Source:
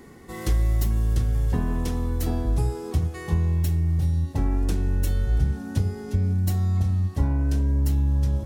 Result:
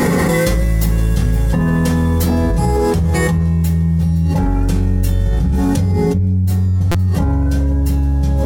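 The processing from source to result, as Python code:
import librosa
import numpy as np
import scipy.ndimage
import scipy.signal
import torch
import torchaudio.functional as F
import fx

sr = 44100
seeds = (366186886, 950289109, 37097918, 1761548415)

y = fx.hum_notches(x, sr, base_hz=60, count=2)
y = fx.level_steps(y, sr, step_db=10)
y = 10.0 ** (-16.5 / 20.0) * np.tanh(y / 10.0 ** (-16.5 / 20.0))
y = fx.low_shelf(y, sr, hz=440.0, db=9.5, at=(5.9, 6.44), fade=0.02)
y = fx.echo_feedback(y, sr, ms=516, feedback_pct=51, wet_db=-18.5)
y = fx.rev_fdn(y, sr, rt60_s=0.38, lf_ratio=0.7, hf_ratio=0.55, size_ms=34.0, drr_db=-4.0)
y = fx.buffer_glitch(y, sr, at_s=(6.91,), block=256, repeats=5)
y = fx.env_flatten(y, sr, amount_pct=100)
y = y * 10.0 ** (-3.0 / 20.0)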